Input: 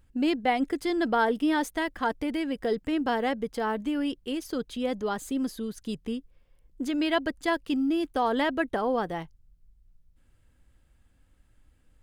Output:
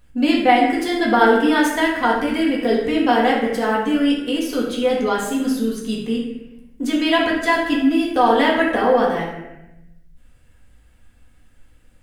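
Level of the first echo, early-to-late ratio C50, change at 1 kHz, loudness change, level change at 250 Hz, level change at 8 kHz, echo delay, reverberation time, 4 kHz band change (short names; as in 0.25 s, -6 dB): none, 2.5 dB, +11.0 dB, +10.5 dB, +9.5 dB, +10.5 dB, none, 0.95 s, +11.5 dB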